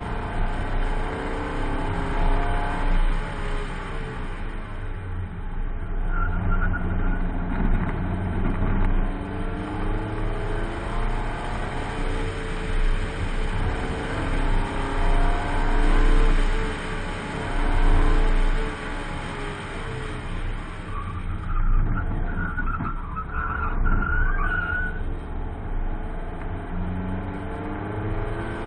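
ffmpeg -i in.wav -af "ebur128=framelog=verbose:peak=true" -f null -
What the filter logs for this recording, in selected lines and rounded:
Integrated loudness:
  I:         -28.4 LUFS
  Threshold: -38.4 LUFS
Loudness range:
  LRA:         5.2 LU
  Threshold: -48.3 LUFS
  LRA low:   -31.0 LUFS
  LRA high:  -25.9 LUFS
True peak:
  Peak:       -9.1 dBFS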